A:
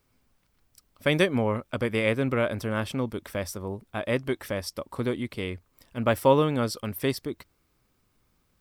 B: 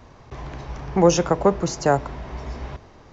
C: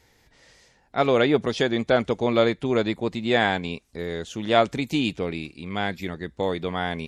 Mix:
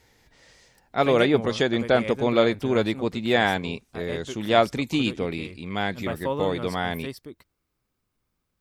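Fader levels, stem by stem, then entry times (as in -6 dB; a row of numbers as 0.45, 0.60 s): -8.5 dB, off, 0.0 dB; 0.00 s, off, 0.00 s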